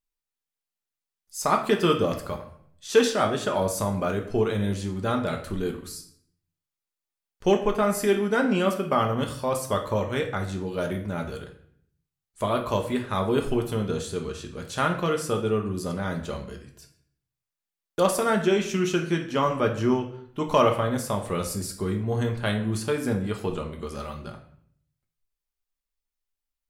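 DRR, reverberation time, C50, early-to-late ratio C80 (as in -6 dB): 2.5 dB, 0.60 s, 9.0 dB, 12.5 dB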